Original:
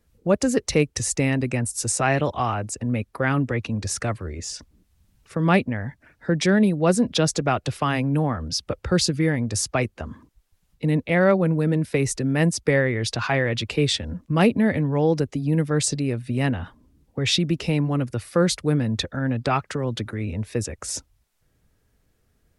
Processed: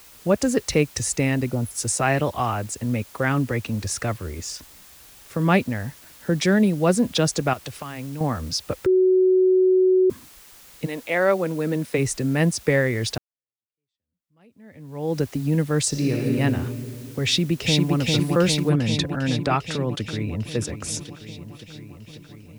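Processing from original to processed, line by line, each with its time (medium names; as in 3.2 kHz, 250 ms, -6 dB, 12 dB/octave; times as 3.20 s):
1.50–1.71 s: spectral selection erased 1.5–10 kHz
5.83–6.40 s: treble shelf 2.3 kHz -8.5 dB
7.53–8.21 s: compression 12:1, threshold -29 dBFS
8.86–10.10 s: bleep 372 Hz -13.5 dBFS
10.85–11.97 s: high-pass 560 Hz -> 160 Hz
13.18–15.20 s: fade in exponential
15.89–16.36 s: reverb throw, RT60 2.5 s, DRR -3 dB
17.25–17.95 s: echo throw 400 ms, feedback 75%, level -1.5 dB
18.69 s: noise floor step -48 dB -64 dB
19.91–20.55 s: echo throw 540 ms, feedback 75%, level -11 dB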